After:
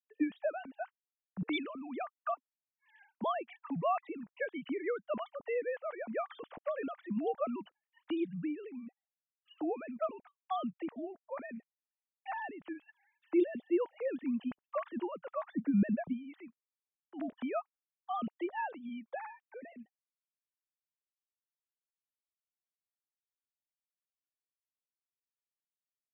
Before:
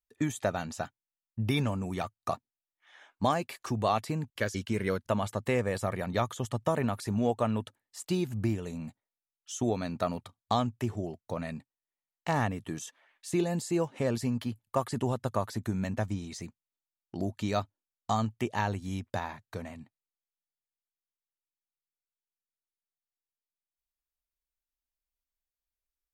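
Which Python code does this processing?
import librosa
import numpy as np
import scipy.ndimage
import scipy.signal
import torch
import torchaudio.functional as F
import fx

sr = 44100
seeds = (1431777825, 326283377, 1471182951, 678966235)

y = fx.sine_speech(x, sr)
y = fx.low_shelf(y, sr, hz=470.0, db=10.0, at=(15.54, 16.12), fade=0.02)
y = F.gain(torch.from_numpy(y), -6.0).numpy()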